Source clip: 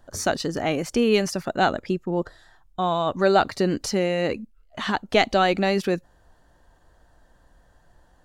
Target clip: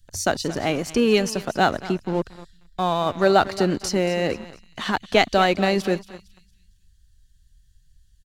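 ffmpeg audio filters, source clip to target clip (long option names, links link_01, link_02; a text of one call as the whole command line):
ffmpeg -i in.wav -filter_complex "[0:a]aecho=1:1:229|458|687|916:0.188|0.0716|0.0272|0.0103,acrossover=split=140|2700[link_01][link_02][link_03];[link_02]aeval=exprs='sgn(val(0))*max(abs(val(0))-0.0126,0)':channel_layout=same[link_04];[link_01][link_04][link_03]amix=inputs=3:normalize=0,volume=2dB" out.wav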